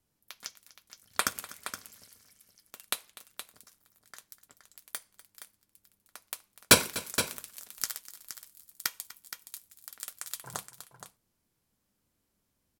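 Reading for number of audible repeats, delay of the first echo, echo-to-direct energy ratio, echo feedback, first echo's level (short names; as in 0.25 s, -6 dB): 2, 0.247 s, -10.0 dB, no steady repeat, -18.0 dB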